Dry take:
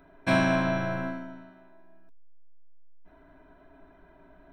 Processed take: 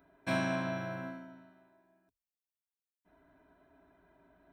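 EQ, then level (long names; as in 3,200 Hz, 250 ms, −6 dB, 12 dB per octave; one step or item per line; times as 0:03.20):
high-pass filter 57 Hz
high-shelf EQ 7,400 Hz +7.5 dB
−9.0 dB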